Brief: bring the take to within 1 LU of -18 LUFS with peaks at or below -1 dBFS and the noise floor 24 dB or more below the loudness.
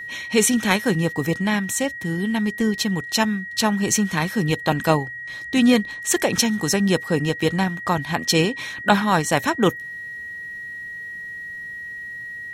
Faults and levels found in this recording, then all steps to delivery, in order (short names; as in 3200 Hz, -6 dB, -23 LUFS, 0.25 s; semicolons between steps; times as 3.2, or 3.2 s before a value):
steady tone 1900 Hz; tone level -31 dBFS; loudness -22.0 LUFS; peak -2.5 dBFS; loudness target -18.0 LUFS
-> notch 1900 Hz, Q 30; gain +4 dB; limiter -1 dBFS